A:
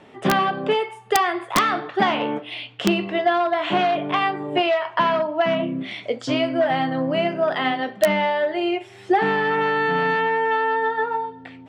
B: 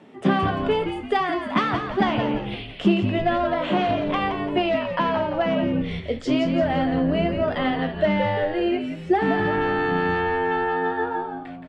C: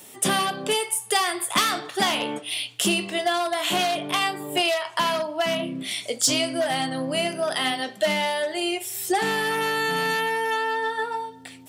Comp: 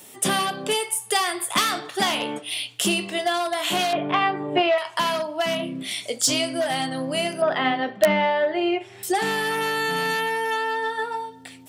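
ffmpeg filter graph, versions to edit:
-filter_complex "[0:a]asplit=2[a][b];[2:a]asplit=3[c][d][e];[c]atrim=end=3.932[f];[a]atrim=start=3.928:end=4.782[g];[d]atrim=start=4.778:end=7.422[h];[b]atrim=start=7.418:end=9.032[i];[e]atrim=start=9.028[j];[f][g]acrossfade=d=0.004:c1=hsin:c2=hsin[k];[k][h]acrossfade=d=0.004:c1=hsin:c2=hsin[l];[l][i]acrossfade=d=0.004:c1=hsin:c2=hsin[m];[m][j]acrossfade=d=0.004:c1=hsin:c2=hsin"

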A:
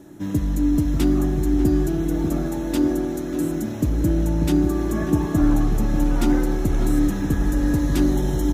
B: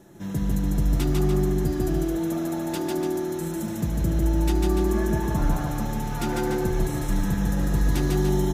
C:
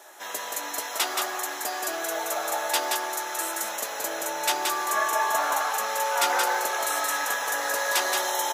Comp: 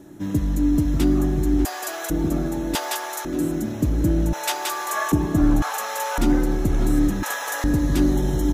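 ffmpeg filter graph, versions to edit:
-filter_complex "[2:a]asplit=5[a][b][c][d][e];[0:a]asplit=6[f][g][h][i][j][k];[f]atrim=end=1.652[l];[a]atrim=start=1.648:end=2.102[m];[g]atrim=start=2.098:end=2.752[n];[b]atrim=start=2.748:end=3.252[o];[h]atrim=start=3.248:end=4.332[p];[c]atrim=start=4.328:end=5.122[q];[i]atrim=start=5.118:end=5.622[r];[d]atrim=start=5.618:end=6.182[s];[j]atrim=start=6.178:end=7.232[t];[e]atrim=start=7.228:end=7.642[u];[k]atrim=start=7.638[v];[l][m]acrossfade=d=0.004:c1=hsin:c2=hsin[w];[w][n]acrossfade=d=0.004:c1=hsin:c2=hsin[x];[x][o]acrossfade=d=0.004:c1=hsin:c2=hsin[y];[y][p]acrossfade=d=0.004:c1=hsin:c2=hsin[z];[z][q]acrossfade=d=0.004:c1=hsin:c2=hsin[aa];[aa][r]acrossfade=d=0.004:c1=hsin:c2=hsin[ab];[ab][s]acrossfade=d=0.004:c1=hsin:c2=hsin[ac];[ac][t]acrossfade=d=0.004:c1=hsin:c2=hsin[ad];[ad][u]acrossfade=d=0.004:c1=hsin:c2=hsin[ae];[ae][v]acrossfade=d=0.004:c1=hsin:c2=hsin"

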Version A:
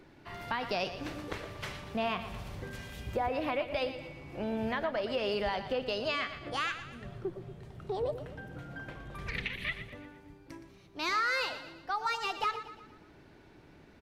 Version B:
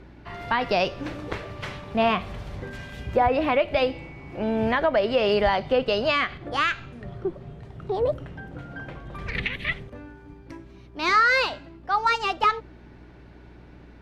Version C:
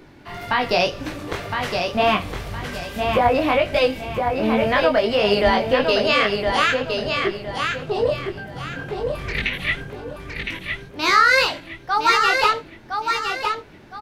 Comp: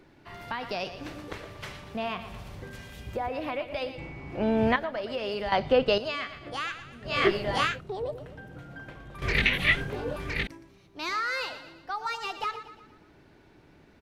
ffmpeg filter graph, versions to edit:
-filter_complex "[1:a]asplit=2[a][b];[2:a]asplit=2[c][d];[0:a]asplit=5[e][f][g][h][i];[e]atrim=end=3.982[j];[a]atrim=start=3.978:end=4.762[k];[f]atrim=start=4.758:end=5.522[l];[b]atrim=start=5.518:end=5.982[m];[g]atrim=start=5.978:end=7.27[n];[c]atrim=start=7.03:end=7.82[o];[h]atrim=start=7.58:end=9.222[p];[d]atrim=start=9.218:end=10.472[q];[i]atrim=start=10.468[r];[j][k]acrossfade=d=0.004:c1=hsin:c2=hsin[s];[s][l]acrossfade=d=0.004:c1=hsin:c2=hsin[t];[t][m]acrossfade=d=0.004:c1=hsin:c2=hsin[u];[u][n]acrossfade=d=0.004:c1=hsin:c2=hsin[v];[v][o]acrossfade=d=0.24:c1=tri:c2=tri[w];[w][p]acrossfade=d=0.24:c1=tri:c2=tri[x];[x][q]acrossfade=d=0.004:c1=hsin:c2=hsin[y];[y][r]acrossfade=d=0.004:c1=hsin:c2=hsin"

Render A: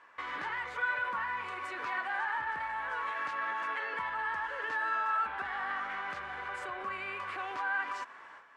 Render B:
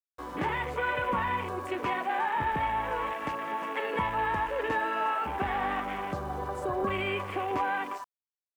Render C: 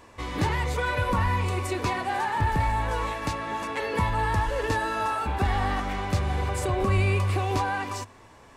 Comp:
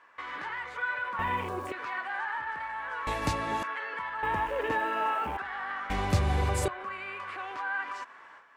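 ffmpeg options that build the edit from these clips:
-filter_complex "[1:a]asplit=2[a][b];[2:a]asplit=2[c][d];[0:a]asplit=5[e][f][g][h][i];[e]atrim=end=1.192[j];[a]atrim=start=1.188:end=1.722[k];[f]atrim=start=1.718:end=3.072[l];[c]atrim=start=3.068:end=3.632[m];[g]atrim=start=3.628:end=4.232[n];[b]atrim=start=4.228:end=5.372[o];[h]atrim=start=5.368:end=5.902[p];[d]atrim=start=5.898:end=6.682[q];[i]atrim=start=6.678[r];[j][k]acrossfade=d=0.004:c1=hsin:c2=hsin[s];[s][l]acrossfade=d=0.004:c1=hsin:c2=hsin[t];[t][m]acrossfade=d=0.004:c1=hsin:c2=hsin[u];[u][n]acrossfade=d=0.004:c1=hsin:c2=hsin[v];[v][o]acrossfade=d=0.004:c1=hsin:c2=hsin[w];[w][p]acrossfade=d=0.004:c1=hsin:c2=hsin[x];[x][q]acrossfade=d=0.004:c1=hsin:c2=hsin[y];[y][r]acrossfade=d=0.004:c1=hsin:c2=hsin"

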